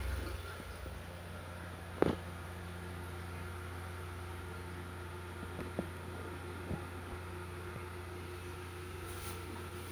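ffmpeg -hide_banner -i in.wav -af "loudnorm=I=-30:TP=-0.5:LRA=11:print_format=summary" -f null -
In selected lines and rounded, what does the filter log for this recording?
Input Integrated:    -44.1 LUFS
Input True Peak:     -12.6 dBTP
Input LRA:             3.4 LU
Input Threshold:     -54.1 LUFS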